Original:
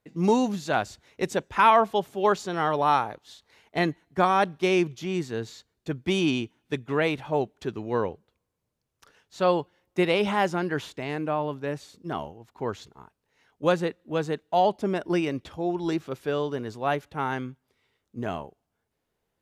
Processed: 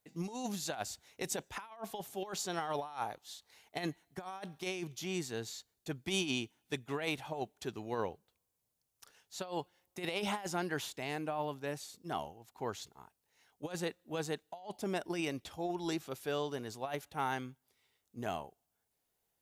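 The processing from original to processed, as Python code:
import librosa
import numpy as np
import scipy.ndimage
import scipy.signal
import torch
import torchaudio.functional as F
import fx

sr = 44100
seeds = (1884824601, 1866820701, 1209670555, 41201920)

y = fx.peak_eq(x, sr, hz=760.0, db=6.0, octaves=0.46)
y = fx.over_compress(y, sr, threshold_db=-24.0, ratio=-0.5)
y = F.preemphasis(torch.from_numpy(y), 0.8).numpy()
y = y * librosa.db_to_amplitude(1.0)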